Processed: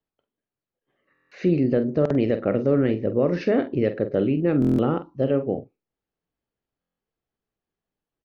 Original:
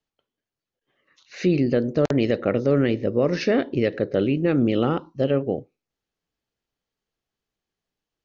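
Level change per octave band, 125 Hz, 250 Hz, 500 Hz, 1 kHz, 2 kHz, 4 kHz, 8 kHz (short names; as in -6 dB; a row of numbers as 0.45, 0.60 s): 0.0 dB, 0.0 dB, -0.5 dB, -1.5 dB, -4.5 dB, -8.5 dB, n/a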